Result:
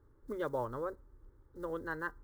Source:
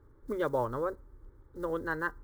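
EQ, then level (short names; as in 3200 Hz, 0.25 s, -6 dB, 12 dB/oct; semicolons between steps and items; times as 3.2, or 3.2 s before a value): notch 2300 Hz, Q 20; -5.5 dB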